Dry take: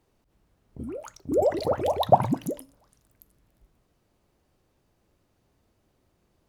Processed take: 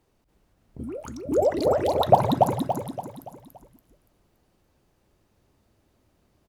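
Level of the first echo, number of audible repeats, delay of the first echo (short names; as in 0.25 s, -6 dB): -3.5 dB, 5, 0.285 s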